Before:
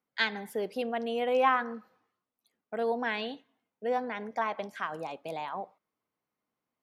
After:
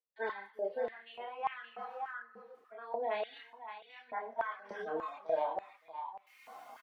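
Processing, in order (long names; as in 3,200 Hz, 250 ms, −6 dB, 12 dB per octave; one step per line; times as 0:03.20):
harmonic-percussive split with one part muted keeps harmonic
camcorder AGC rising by 25 dB per second
noise gate with hold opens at −56 dBFS
spectral tilt −2 dB per octave
reversed playback
downward compressor 10 to 1, threshold −42 dBFS, peak gain reduction 23 dB
reversed playback
multi-voice chorus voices 6, 1.1 Hz, delay 28 ms, depth 3.1 ms
on a send: single-tap delay 570 ms −10 dB
on the sum: high-pass on a step sequencer 3.4 Hz 460–2,400 Hz
level +8.5 dB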